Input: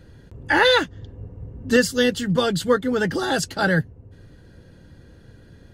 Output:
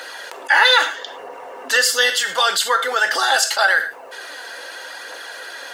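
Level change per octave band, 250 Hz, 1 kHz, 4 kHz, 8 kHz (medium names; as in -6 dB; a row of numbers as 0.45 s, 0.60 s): -22.0 dB, +6.5 dB, +8.0 dB, +10.5 dB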